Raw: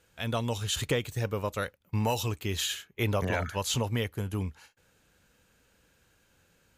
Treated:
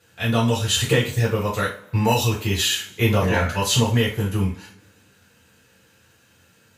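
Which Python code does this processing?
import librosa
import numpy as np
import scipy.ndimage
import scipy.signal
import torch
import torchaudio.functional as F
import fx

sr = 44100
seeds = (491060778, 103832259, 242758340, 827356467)

y = scipy.signal.sosfilt(scipy.signal.butter(2, 110.0, 'highpass', fs=sr, output='sos'), x)
y = fx.rev_double_slope(y, sr, seeds[0], early_s=0.34, late_s=1.7, knee_db=-25, drr_db=-7.0)
y = F.gain(torch.from_numpy(y), 2.0).numpy()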